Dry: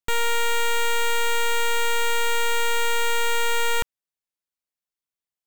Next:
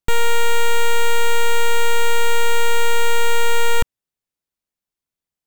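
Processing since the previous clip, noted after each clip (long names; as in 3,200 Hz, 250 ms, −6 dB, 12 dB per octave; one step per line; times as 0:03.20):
low-shelf EQ 420 Hz +9 dB
level +2 dB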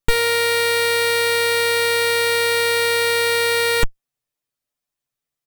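lower of the sound and its delayed copy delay 8.5 ms
comb filter 6.9 ms, depth 49%
level +3.5 dB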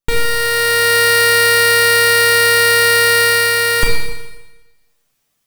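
automatic gain control gain up to 16.5 dB
four-comb reverb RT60 1.1 s, combs from 28 ms, DRR −0.5 dB
level −1.5 dB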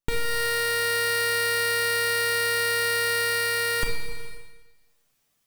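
downward compressor 3 to 1, threshold −20 dBFS, peak gain reduction 10 dB
level −4 dB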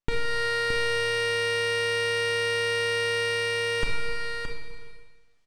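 high-frequency loss of the air 93 metres
single-tap delay 620 ms −7 dB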